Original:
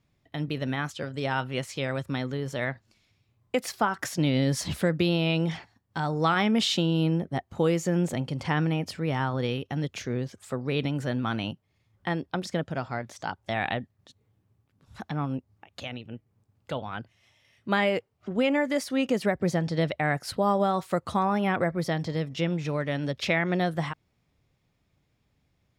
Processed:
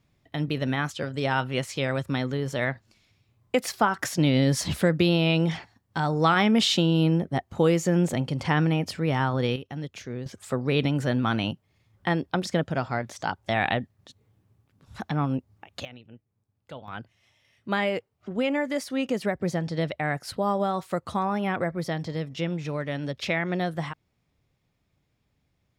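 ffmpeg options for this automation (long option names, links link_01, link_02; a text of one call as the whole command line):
ffmpeg -i in.wav -af "asetnsamples=nb_out_samples=441:pad=0,asendcmd='9.56 volume volume -4.5dB;10.26 volume volume 4dB;15.85 volume volume -8.5dB;16.88 volume volume -1.5dB',volume=3dB" out.wav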